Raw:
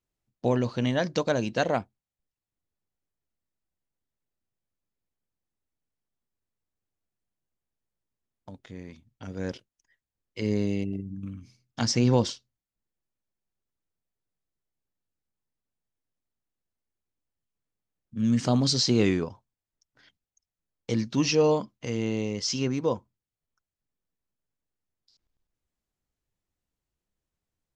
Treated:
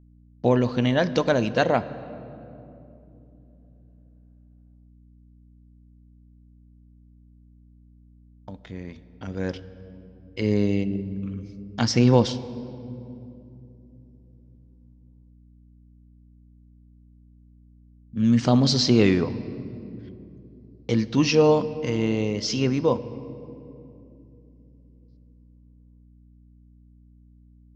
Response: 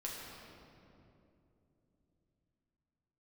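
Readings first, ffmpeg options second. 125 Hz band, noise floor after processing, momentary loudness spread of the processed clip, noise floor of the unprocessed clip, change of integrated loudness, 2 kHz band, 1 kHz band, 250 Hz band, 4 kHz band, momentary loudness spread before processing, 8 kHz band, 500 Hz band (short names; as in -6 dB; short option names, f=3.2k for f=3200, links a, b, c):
+5.0 dB, -53 dBFS, 21 LU, under -85 dBFS, +4.0 dB, +4.5 dB, +5.0 dB, +5.0 dB, +2.5 dB, 21 LU, -1.0 dB, +5.0 dB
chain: -filter_complex "[0:a]agate=range=-33dB:threshold=-52dB:ratio=3:detection=peak,aeval=exprs='val(0)+0.00158*(sin(2*PI*60*n/s)+sin(2*PI*2*60*n/s)/2+sin(2*PI*3*60*n/s)/3+sin(2*PI*4*60*n/s)/4+sin(2*PI*5*60*n/s)/5)':c=same,lowpass=4.9k,asplit=2[a][b];[1:a]atrim=start_sample=2205[c];[b][c]afir=irnorm=-1:irlink=0,volume=-12dB[d];[a][d]amix=inputs=2:normalize=0,volume=3.5dB"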